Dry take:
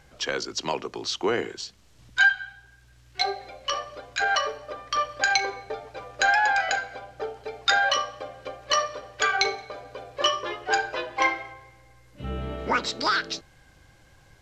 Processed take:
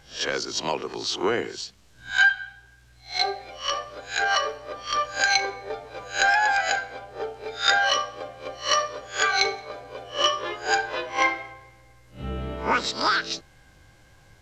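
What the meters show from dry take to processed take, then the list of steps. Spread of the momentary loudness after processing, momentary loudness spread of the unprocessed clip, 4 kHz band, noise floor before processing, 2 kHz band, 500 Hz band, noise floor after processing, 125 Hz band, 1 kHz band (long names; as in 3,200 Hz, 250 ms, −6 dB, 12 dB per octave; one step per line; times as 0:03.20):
16 LU, 17 LU, +2.5 dB, −56 dBFS, +1.0 dB, +1.0 dB, −55 dBFS, +0.5 dB, +1.0 dB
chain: peak hold with a rise ahead of every peak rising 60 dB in 0.31 s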